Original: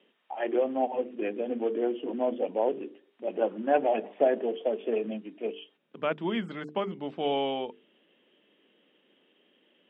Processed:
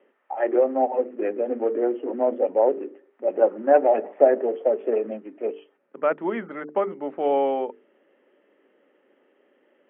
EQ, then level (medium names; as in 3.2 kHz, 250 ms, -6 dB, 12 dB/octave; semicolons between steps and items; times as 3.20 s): cabinet simulation 240–2200 Hz, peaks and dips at 270 Hz +5 dB, 390 Hz +6 dB, 560 Hz +9 dB, 830 Hz +6 dB, 1.3 kHz +7 dB, 1.9 kHz +5 dB; 0.0 dB